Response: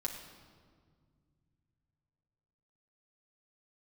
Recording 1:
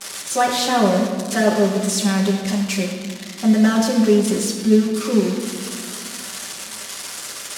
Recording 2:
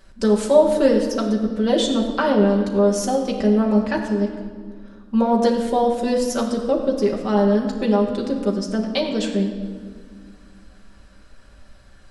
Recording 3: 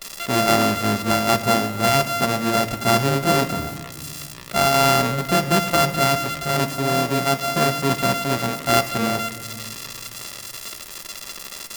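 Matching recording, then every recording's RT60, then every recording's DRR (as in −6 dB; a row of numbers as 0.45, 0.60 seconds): 2; 1.9, 1.9, 2.0 seconds; −8.0, −1.5, 7.5 decibels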